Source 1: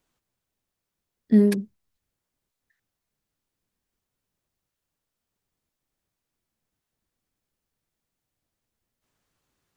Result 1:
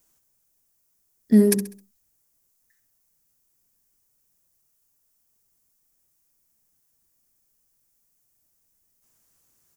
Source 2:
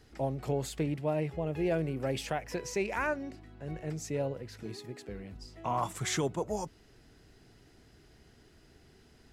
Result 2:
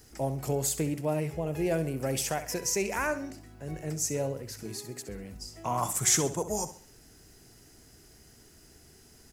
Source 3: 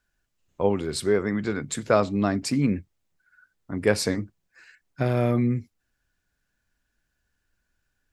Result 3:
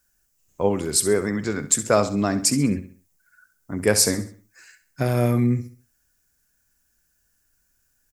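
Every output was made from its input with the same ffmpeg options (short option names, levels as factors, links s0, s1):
-af "aexciter=amount=4.4:drive=5.5:freq=5300,aecho=1:1:66|132|198|264:0.224|0.0873|0.0341|0.0133,volume=1.19"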